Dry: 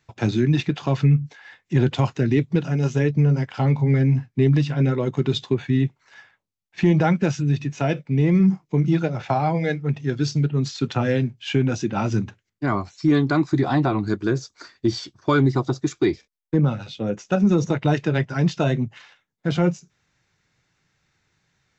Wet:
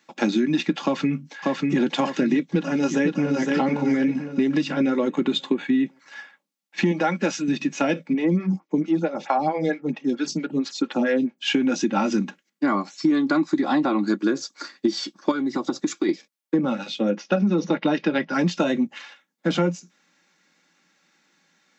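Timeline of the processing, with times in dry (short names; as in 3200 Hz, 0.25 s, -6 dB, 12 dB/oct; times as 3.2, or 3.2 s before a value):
0.83–1.77 echo throw 0.59 s, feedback 45%, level -3 dB
2.51–3.53 echo throw 0.51 s, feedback 40%, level -5 dB
5.1–5.86 bell 5400 Hz -11 dB 0.47 oct
6.91–7.48 bell 140 Hz -9 dB 2.1 oct
8.13–11.42 photocell phaser 4.5 Hz
15.31–16.09 compressor, threshold -23 dBFS
17.11–18.33 steep low-pass 5400 Hz
whole clip: Chebyshev high-pass 170 Hz, order 5; comb 3.6 ms, depth 46%; compressor, threshold -23 dBFS; gain +5.5 dB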